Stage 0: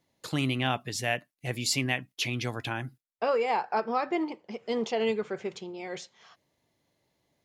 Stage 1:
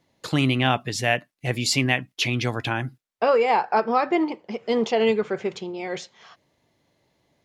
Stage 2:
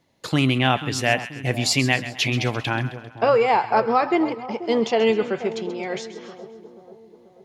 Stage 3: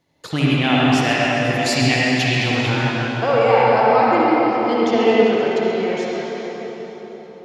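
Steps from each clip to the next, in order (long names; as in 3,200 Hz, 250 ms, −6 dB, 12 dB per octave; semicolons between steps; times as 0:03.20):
high-shelf EQ 8,000 Hz −9 dB; level +7.5 dB
echo with a time of its own for lows and highs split 1,000 Hz, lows 486 ms, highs 132 ms, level −13 dB; level +1.5 dB
convolution reverb RT60 4.0 s, pre-delay 47 ms, DRR −6.5 dB; level −2.5 dB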